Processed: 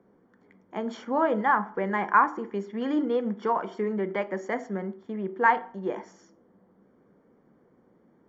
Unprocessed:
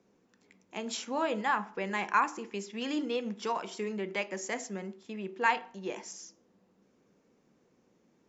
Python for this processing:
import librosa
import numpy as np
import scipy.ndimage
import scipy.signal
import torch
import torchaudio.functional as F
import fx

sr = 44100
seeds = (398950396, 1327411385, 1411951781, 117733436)

y = scipy.signal.savgol_filter(x, 41, 4, mode='constant')
y = F.gain(torch.from_numpy(y), 7.0).numpy()